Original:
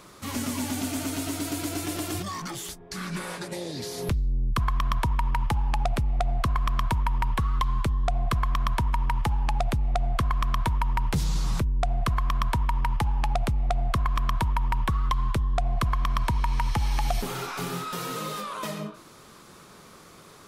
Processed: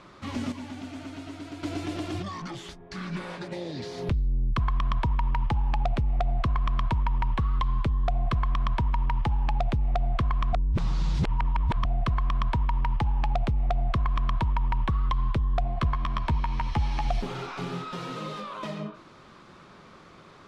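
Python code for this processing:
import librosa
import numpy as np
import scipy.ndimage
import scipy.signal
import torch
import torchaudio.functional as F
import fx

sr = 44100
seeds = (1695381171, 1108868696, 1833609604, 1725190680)

y = fx.doubler(x, sr, ms=13.0, db=-8.0, at=(15.63, 17.05))
y = fx.edit(y, sr, fx.clip_gain(start_s=0.52, length_s=1.11, db=-8.0),
    fx.reverse_span(start_s=10.53, length_s=1.32), tone=tone)
y = scipy.signal.sosfilt(scipy.signal.butter(2, 3500.0, 'lowpass', fs=sr, output='sos'), y)
y = fx.notch(y, sr, hz=450.0, q=12.0)
y = fx.dynamic_eq(y, sr, hz=1500.0, q=0.9, threshold_db=-41.0, ratio=4.0, max_db=-4)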